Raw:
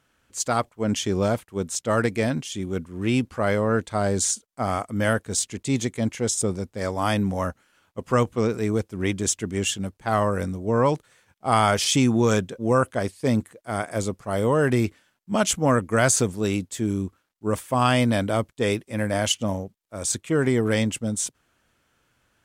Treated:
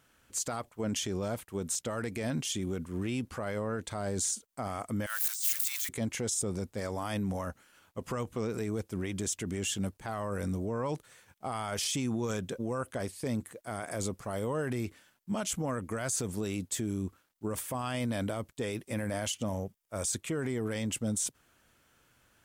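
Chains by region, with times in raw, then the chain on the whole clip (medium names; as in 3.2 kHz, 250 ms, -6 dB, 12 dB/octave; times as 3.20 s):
5.06–5.89 s: zero-crossing glitches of -23.5 dBFS + high-pass 1.2 kHz 24 dB/octave + compressor with a negative ratio -33 dBFS
19.49–20.07 s: peaking EQ 270 Hz -4 dB + band-stop 4.1 kHz, Q 8
whole clip: compression, threshold -24 dBFS; peak limiter -25 dBFS; treble shelf 9.9 kHz +8.5 dB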